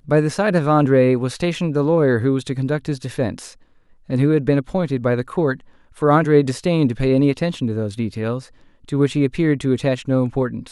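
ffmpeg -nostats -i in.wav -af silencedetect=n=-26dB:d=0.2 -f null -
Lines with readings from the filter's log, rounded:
silence_start: 3.47
silence_end: 4.10 | silence_duration: 0.63
silence_start: 5.54
silence_end: 6.02 | silence_duration: 0.48
silence_start: 8.39
silence_end: 8.89 | silence_duration: 0.50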